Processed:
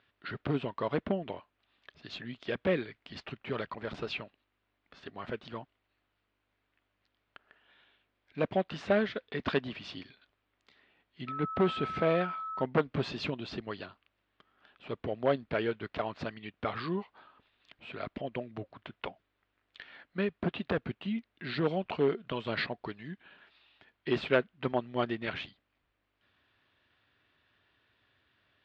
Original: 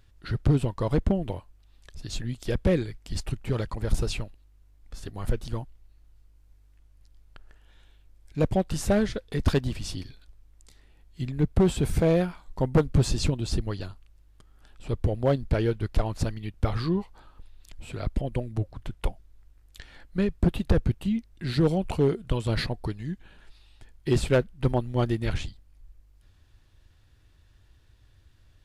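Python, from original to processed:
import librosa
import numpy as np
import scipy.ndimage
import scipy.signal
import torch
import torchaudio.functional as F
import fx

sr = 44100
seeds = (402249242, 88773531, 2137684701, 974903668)

y = fx.cabinet(x, sr, low_hz=330.0, low_slope=12, high_hz=3400.0, hz=(330.0, 500.0, 840.0), db=(-6, -6, -5))
y = fx.dmg_tone(y, sr, hz=1300.0, level_db=-37.0, at=(11.27, 12.61), fade=0.02)
y = F.gain(torch.from_numpy(y), 1.5).numpy()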